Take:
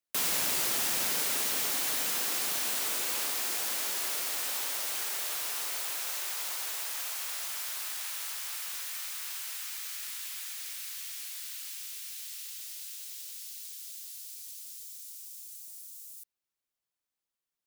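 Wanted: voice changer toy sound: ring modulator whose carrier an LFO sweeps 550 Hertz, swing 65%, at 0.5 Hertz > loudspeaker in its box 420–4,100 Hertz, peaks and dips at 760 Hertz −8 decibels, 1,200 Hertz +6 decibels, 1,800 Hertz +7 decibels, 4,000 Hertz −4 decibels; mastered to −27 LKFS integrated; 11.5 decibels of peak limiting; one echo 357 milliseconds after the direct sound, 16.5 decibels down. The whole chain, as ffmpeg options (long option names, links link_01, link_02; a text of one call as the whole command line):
ffmpeg -i in.wav -af "alimiter=level_in=4.5dB:limit=-24dB:level=0:latency=1,volume=-4.5dB,aecho=1:1:357:0.15,aeval=exprs='val(0)*sin(2*PI*550*n/s+550*0.65/0.5*sin(2*PI*0.5*n/s))':channel_layout=same,highpass=420,equalizer=frequency=760:width_type=q:width=4:gain=-8,equalizer=frequency=1200:width_type=q:width=4:gain=6,equalizer=frequency=1800:width_type=q:width=4:gain=7,equalizer=frequency=4000:width_type=q:width=4:gain=-4,lowpass=frequency=4100:width=0.5412,lowpass=frequency=4100:width=1.3066,volume=19.5dB" out.wav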